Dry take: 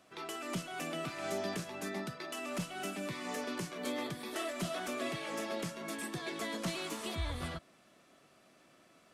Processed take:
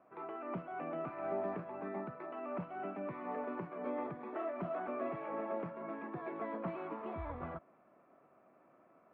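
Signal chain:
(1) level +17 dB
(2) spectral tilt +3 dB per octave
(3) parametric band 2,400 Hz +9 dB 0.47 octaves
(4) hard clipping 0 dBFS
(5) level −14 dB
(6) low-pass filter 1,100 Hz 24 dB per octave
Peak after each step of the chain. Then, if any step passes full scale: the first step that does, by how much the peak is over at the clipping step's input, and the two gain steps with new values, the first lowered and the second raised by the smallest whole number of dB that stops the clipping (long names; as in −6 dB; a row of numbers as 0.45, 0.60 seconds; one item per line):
−8.0, −5.0, −3.0, −3.0, −17.0, −26.0 dBFS
no step passes full scale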